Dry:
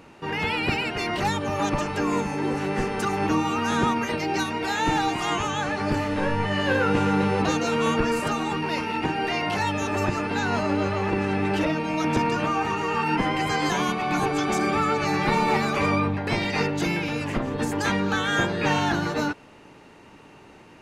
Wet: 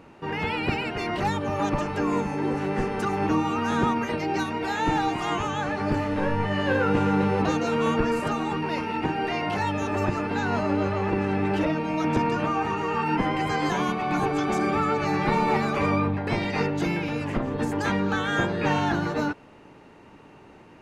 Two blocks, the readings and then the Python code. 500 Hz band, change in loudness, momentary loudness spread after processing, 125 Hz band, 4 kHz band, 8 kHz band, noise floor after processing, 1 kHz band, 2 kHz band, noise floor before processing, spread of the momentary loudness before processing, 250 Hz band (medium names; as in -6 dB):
-0.5 dB, -1.0 dB, 4 LU, 0.0 dB, -5.0 dB, -7.0 dB, -50 dBFS, -1.0 dB, -3.0 dB, -49 dBFS, 4 LU, 0.0 dB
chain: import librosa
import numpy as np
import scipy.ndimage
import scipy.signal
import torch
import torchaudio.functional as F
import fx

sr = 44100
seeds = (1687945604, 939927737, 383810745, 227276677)

y = fx.high_shelf(x, sr, hz=2500.0, db=-8.0)